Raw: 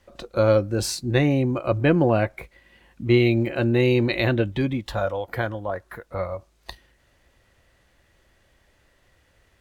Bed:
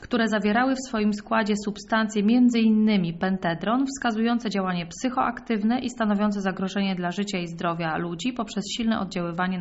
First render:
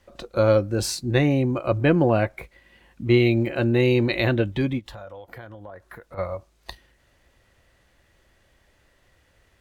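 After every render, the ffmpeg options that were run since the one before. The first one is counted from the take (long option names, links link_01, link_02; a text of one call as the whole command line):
ffmpeg -i in.wav -filter_complex "[0:a]asplit=3[link_01][link_02][link_03];[link_01]afade=type=out:start_time=4.78:duration=0.02[link_04];[link_02]acompressor=threshold=-37dB:ratio=6:attack=3.2:release=140:knee=1:detection=peak,afade=type=in:start_time=4.78:duration=0.02,afade=type=out:start_time=6.17:duration=0.02[link_05];[link_03]afade=type=in:start_time=6.17:duration=0.02[link_06];[link_04][link_05][link_06]amix=inputs=3:normalize=0" out.wav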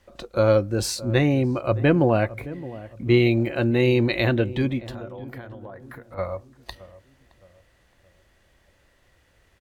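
ffmpeg -i in.wav -filter_complex "[0:a]asplit=2[link_01][link_02];[link_02]adelay=618,lowpass=frequency=840:poles=1,volume=-16dB,asplit=2[link_03][link_04];[link_04]adelay=618,lowpass=frequency=840:poles=1,volume=0.45,asplit=2[link_05][link_06];[link_06]adelay=618,lowpass=frequency=840:poles=1,volume=0.45,asplit=2[link_07][link_08];[link_08]adelay=618,lowpass=frequency=840:poles=1,volume=0.45[link_09];[link_01][link_03][link_05][link_07][link_09]amix=inputs=5:normalize=0" out.wav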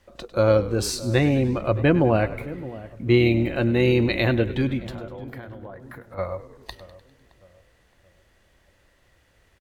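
ffmpeg -i in.wav -filter_complex "[0:a]asplit=7[link_01][link_02][link_03][link_04][link_05][link_06][link_07];[link_02]adelay=100,afreqshift=-40,volume=-15.5dB[link_08];[link_03]adelay=200,afreqshift=-80,volume=-20.1dB[link_09];[link_04]adelay=300,afreqshift=-120,volume=-24.7dB[link_10];[link_05]adelay=400,afreqshift=-160,volume=-29.2dB[link_11];[link_06]adelay=500,afreqshift=-200,volume=-33.8dB[link_12];[link_07]adelay=600,afreqshift=-240,volume=-38.4dB[link_13];[link_01][link_08][link_09][link_10][link_11][link_12][link_13]amix=inputs=7:normalize=0" out.wav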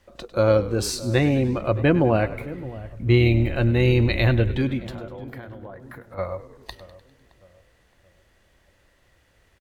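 ffmpeg -i in.wav -filter_complex "[0:a]asplit=3[link_01][link_02][link_03];[link_01]afade=type=out:start_time=2.63:duration=0.02[link_04];[link_02]asubboost=boost=4:cutoff=120,afade=type=in:start_time=2.63:duration=0.02,afade=type=out:start_time=4.56:duration=0.02[link_05];[link_03]afade=type=in:start_time=4.56:duration=0.02[link_06];[link_04][link_05][link_06]amix=inputs=3:normalize=0" out.wav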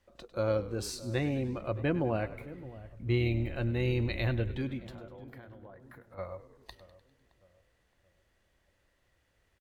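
ffmpeg -i in.wav -af "volume=-11.5dB" out.wav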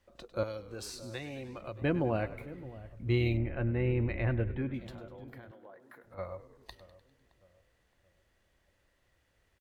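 ffmpeg -i in.wav -filter_complex "[0:a]asettb=1/sr,asplit=3[link_01][link_02][link_03];[link_01]atrim=end=0.434[link_04];[link_02]atrim=start=0.43:end=1.82,asetpts=PTS-STARTPTS,afade=type=in:duration=0.004:curve=qsin,afade=type=out:start_time=1.386:duration=0.004:curve=qsin,acrossover=split=540|3100[link_05][link_06][link_07];[link_05]acompressor=threshold=-45dB:ratio=4[link_08];[link_06]acompressor=threshold=-44dB:ratio=4[link_09];[link_07]acompressor=threshold=-43dB:ratio=4[link_10];[link_08][link_09][link_10]amix=inputs=3:normalize=0[link_11];[link_03]atrim=start=1.816[link_12];[link_04][link_11]acrossfade=duration=0.004:curve1=hsin:curve2=qsin[link_13];[link_13][link_12]acrossfade=duration=0.004:curve1=qsin:curve2=hsin,asettb=1/sr,asplit=3[link_14][link_15][link_16];[link_14]atrim=end=3.374[link_17];[link_15]atrim=start=3.37:end=4.74,asetpts=PTS-STARTPTS,afade=type=in:duration=0.004:curve=qsin,afade=type=out:start_time=1.366:duration=0.004:curve=qsin,lowpass=frequency=2300:width=0.5412,lowpass=frequency=2300:width=1.3066[link_18];[link_16]atrim=start=4.736[link_19];[link_17][link_18]acrossfade=duration=0.004:curve1=hsin:curve2=qsin[link_20];[link_20][link_19]acrossfade=duration=0.004:curve1=qsin:curve2=hsin,asettb=1/sr,asplit=3[link_21][link_22][link_23];[link_21]atrim=end=5.514[link_24];[link_22]atrim=start=5.51:end=6.04,asetpts=PTS-STARTPTS,afade=type=in:duration=0.004:curve=qsin,afade=type=out:start_time=0.526:duration=0.004:curve=qsin,highpass=330[link_25];[link_23]atrim=start=6.036[link_26];[link_24][link_25]acrossfade=duration=0.004:curve1=hsin:curve2=qsin[link_27];[link_27][link_26]acrossfade=duration=0.004:curve1=qsin:curve2=hsin" out.wav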